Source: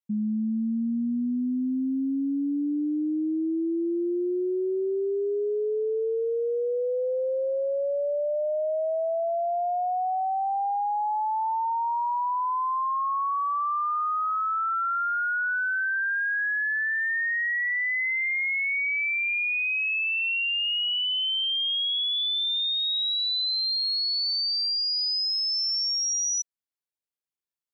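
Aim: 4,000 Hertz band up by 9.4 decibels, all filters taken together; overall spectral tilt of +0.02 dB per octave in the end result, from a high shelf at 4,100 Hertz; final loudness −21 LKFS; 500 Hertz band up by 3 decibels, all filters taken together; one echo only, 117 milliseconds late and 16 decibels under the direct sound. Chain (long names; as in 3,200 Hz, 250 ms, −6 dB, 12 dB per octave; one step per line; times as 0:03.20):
parametric band 500 Hz +3.5 dB
parametric band 4,000 Hz +7 dB
high-shelf EQ 4,100 Hz +8 dB
single-tap delay 117 ms −16 dB
level −2 dB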